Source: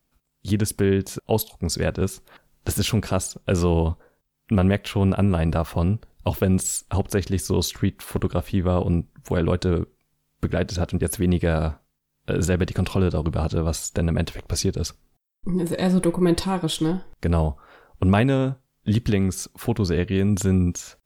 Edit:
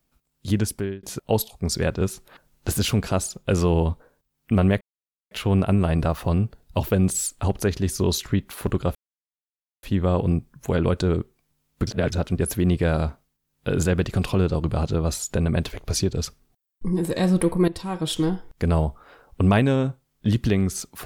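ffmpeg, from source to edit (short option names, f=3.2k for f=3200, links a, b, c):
-filter_complex "[0:a]asplit=7[a][b][c][d][e][f][g];[a]atrim=end=1.03,asetpts=PTS-STARTPTS,afade=t=out:st=0.6:d=0.43[h];[b]atrim=start=1.03:end=4.81,asetpts=PTS-STARTPTS,afade=t=in:d=0.004:c=hsin,afade=t=out:st=3.776:d=0.004:c=hsin,apad=pad_dur=0.5[i];[c]atrim=start=4.81:end=8.45,asetpts=PTS-STARTPTS,afade=t=in:d=0.004:c=hsin,afade=t=out:st=3.636:d=0.004:c=hsin,apad=pad_dur=0.88[j];[d]atrim=start=8.45:end=10.492,asetpts=PTS-STARTPTS,afade=t=in:d=0.004:c=hsin[k];[e]atrim=start=10.488:end=10.742,asetpts=PTS-STARTPTS,areverse[l];[f]atrim=start=10.738:end=16.3,asetpts=PTS-STARTPTS,afade=t=out:st=5.558:d=0.004:c=hsin:silence=0.149624[m];[g]atrim=start=16.3,asetpts=PTS-STARTPTS,afade=t=in:d=0.47:silence=0.149624[n];[h][i][j][k]concat=n=4:v=0:a=1[o];[o][l]acrossfade=d=0.004:c1=hsin:c2=hsin[p];[m][n]concat=n=2:v=0:a=1[q];[p][q]acrossfade=d=0.004:c1=hsin:c2=hsin"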